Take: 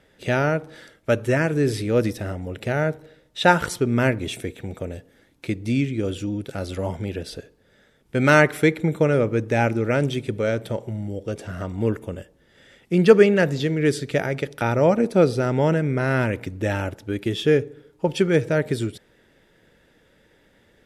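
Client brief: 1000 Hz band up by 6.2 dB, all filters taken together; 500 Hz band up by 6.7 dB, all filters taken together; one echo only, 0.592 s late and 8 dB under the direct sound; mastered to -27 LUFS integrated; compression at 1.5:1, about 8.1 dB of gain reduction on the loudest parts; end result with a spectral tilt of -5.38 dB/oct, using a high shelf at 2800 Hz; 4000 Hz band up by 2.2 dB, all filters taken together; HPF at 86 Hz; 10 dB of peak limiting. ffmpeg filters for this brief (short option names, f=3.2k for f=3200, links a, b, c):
-af "highpass=86,equalizer=f=500:t=o:g=6.5,equalizer=f=1k:t=o:g=6.5,highshelf=f=2.8k:g=-5.5,equalizer=f=4k:t=o:g=6.5,acompressor=threshold=-23dB:ratio=1.5,alimiter=limit=-12.5dB:level=0:latency=1,aecho=1:1:592:0.398,volume=-2.5dB"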